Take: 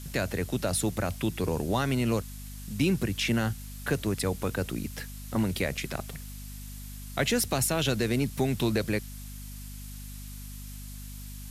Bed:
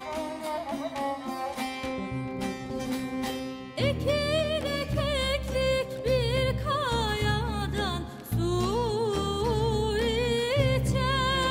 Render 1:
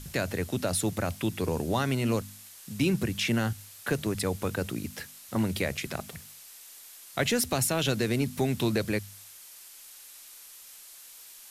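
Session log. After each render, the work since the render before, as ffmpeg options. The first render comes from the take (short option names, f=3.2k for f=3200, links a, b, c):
-af "bandreject=f=50:t=h:w=4,bandreject=f=100:t=h:w=4,bandreject=f=150:t=h:w=4,bandreject=f=200:t=h:w=4,bandreject=f=250:t=h:w=4"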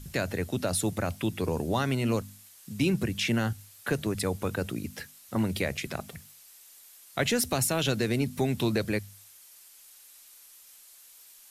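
-af "afftdn=nr=6:nf=-49"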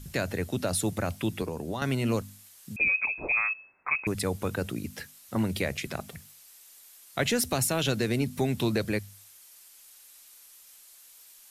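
-filter_complex "[0:a]asettb=1/sr,asplit=3[a][b][c];[a]atrim=end=1.424[d];[b]atrim=start=1.42:end=1.82,asetpts=PTS-STARTPTS,afade=t=in:d=0.004:c=qsin,afade=t=out:st=0.396:d=0.004:c=qsin,acrossover=split=120|4500[e][f][g];[e]acompressor=threshold=-47dB:ratio=4[h];[f]acompressor=threshold=-31dB:ratio=4[i];[g]acompressor=threshold=-55dB:ratio=4[j];[h][i][j]amix=inputs=3:normalize=0[k];[c]atrim=start=1.816[l];[d][k]acrossfade=d=0.004:c1=hsin:c2=qsin[m];[m][l]acrossfade=d=0.004:c1=qsin:c2=hsin,asettb=1/sr,asplit=3[n][o][p];[n]atrim=end=2.764[q];[o]atrim=start=2.76:end=4.07,asetpts=PTS-STARTPTS,afade=t=in:d=0.004:c=qsin,afade=t=out:st=1.306:d=0.004:c=qsin,lowpass=f=2.3k:t=q:w=0.5098,lowpass=f=2.3k:t=q:w=0.6013,lowpass=f=2.3k:t=q:w=0.9,lowpass=f=2.3k:t=q:w=2.563,afreqshift=-2700[r];[p]atrim=start=4.066[s];[q][r]acrossfade=d=0.004:c1=hsin:c2=qsin[t];[t][s]acrossfade=d=0.004:c1=qsin:c2=hsin"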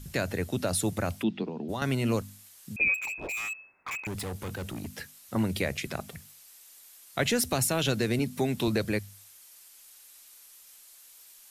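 -filter_complex "[0:a]asplit=3[a][b][c];[a]afade=t=out:st=1.22:d=0.02[d];[b]highpass=f=160:w=0.5412,highpass=f=160:w=1.3066,equalizer=f=220:t=q:w=4:g=6,equalizer=f=530:t=q:w=4:g=-7,equalizer=f=1.1k:t=q:w=4:g=-7,equalizer=f=1.6k:t=q:w=4:g=-7,equalizer=f=2.2k:t=q:w=4:g=-5,lowpass=f=3.8k:w=0.5412,lowpass=f=3.8k:w=1.3066,afade=t=in:st=1.22:d=0.02,afade=t=out:st=1.68:d=0.02[e];[c]afade=t=in:st=1.68:d=0.02[f];[d][e][f]amix=inputs=3:normalize=0,asettb=1/sr,asplit=3[g][h][i];[g]atrim=end=2.944[j];[h]atrim=start=2.94:end=4.99,asetpts=PTS-STARTPTS,afade=t=in:d=0.004:c=qsin,afade=t=out:st=2.046:d=0.004:c=qsin,volume=32.5dB,asoftclip=hard,volume=-32.5dB[k];[i]atrim=start=4.986[l];[j][k]acrossfade=d=0.004:c1=hsin:c2=qsin[m];[m][l]acrossfade=d=0.004:c1=qsin:c2=hsin,asettb=1/sr,asplit=3[n][o][p];[n]atrim=end=8.194[q];[o]atrim=start=8.19:end=8.68,asetpts=PTS-STARTPTS,afade=t=in:d=0.004:c=qsin,afade=t=out:st=0.486:d=0.004:c=qsin,highpass=130[r];[p]atrim=start=8.676[s];[q][r]acrossfade=d=0.004:c1=hsin:c2=qsin[t];[t][s]acrossfade=d=0.004:c1=qsin:c2=hsin"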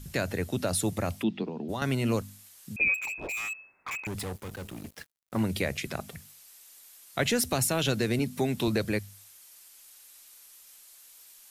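-filter_complex "[0:a]asettb=1/sr,asplit=3[a][b][c];[a]atrim=end=0.894[d];[b]atrim=start=0.89:end=1.38,asetpts=PTS-STARTPTS,afade=t=in:d=0.004:c=qsin,afade=t=out:st=0.486:d=0.004:c=qsin,bandreject=f=1.5k:w=12[e];[c]atrim=start=1.376[f];[d][e]acrossfade=d=0.004:c1=hsin:c2=qsin[g];[g][f]acrossfade=d=0.004:c1=qsin:c2=hsin,asettb=1/sr,asplit=3[h][i][j];[h]atrim=end=4.334[k];[i]atrim=start=4.33:end=5.41,asetpts=PTS-STARTPTS,afade=t=in:d=0.004:c=qsin,afade=t=out:st=1.076:d=0.004:c=qsin,aeval=exprs='sgn(val(0))*max(abs(val(0))-0.00668,0)':c=same[l];[j]atrim=start=5.406[m];[k][l]acrossfade=d=0.004:c1=hsin:c2=qsin[n];[n][m]acrossfade=d=0.004:c1=qsin:c2=hsin"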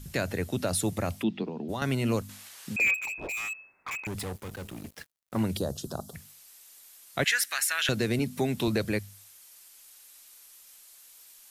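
-filter_complex "[0:a]asettb=1/sr,asplit=3[a][b][c];[a]atrim=end=2.294[d];[b]atrim=start=2.29:end=2.91,asetpts=PTS-STARTPTS,afade=t=in:d=0.004:c=qsin,afade=t=out:st=0.616:d=0.004:c=qsin,asplit=2[e][f];[f]highpass=f=720:p=1,volume=21dB,asoftclip=type=tanh:threshold=-16dB[g];[e][g]amix=inputs=2:normalize=0,lowpass=f=2.4k:p=1,volume=-6dB[h];[c]atrim=start=2.906[i];[d][h]acrossfade=d=0.004:c1=hsin:c2=qsin[j];[j][i]acrossfade=d=0.004:c1=qsin:c2=hsin,asettb=1/sr,asplit=3[k][l][m];[k]atrim=end=5.574[n];[l]atrim=start=5.57:end=6.14,asetpts=PTS-STARTPTS,afade=t=in:d=0.004:c=qsin,afade=t=out:st=0.566:d=0.004:c=qsin,asuperstop=centerf=2200:order=4:qfactor=0.8[o];[m]atrim=start=6.136[p];[n][o]acrossfade=d=0.004:c1=hsin:c2=qsin[q];[q][p]acrossfade=d=0.004:c1=qsin:c2=hsin,asettb=1/sr,asplit=3[r][s][t];[r]atrim=end=7.244[u];[s]atrim=start=7.24:end=7.89,asetpts=PTS-STARTPTS,afade=t=in:d=0.004:c=qsin,afade=t=out:st=0.646:d=0.004:c=qsin,highpass=f=1.7k:t=q:w=4.4[v];[t]atrim=start=7.886[w];[u][v]acrossfade=d=0.004:c1=hsin:c2=qsin[x];[x][w]acrossfade=d=0.004:c1=qsin:c2=hsin"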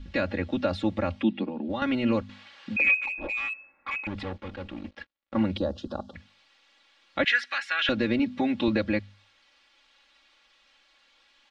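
-af "lowpass=f=3.7k:w=0.5412,lowpass=f=3.7k:w=1.3066,aecho=1:1:3.6:0.96"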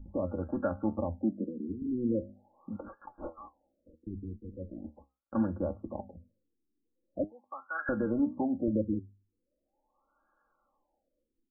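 -af "flanger=delay=9:depth=6.2:regen=69:speed=0.68:shape=triangular,afftfilt=real='re*lt(b*sr/1024,450*pow(1700/450,0.5+0.5*sin(2*PI*0.41*pts/sr)))':imag='im*lt(b*sr/1024,450*pow(1700/450,0.5+0.5*sin(2*PI*0.41*pts/sr)))':win_size=1024:overlap=0.75"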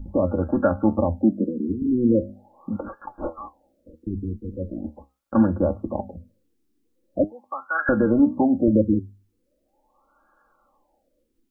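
-af "volume=11.5dB"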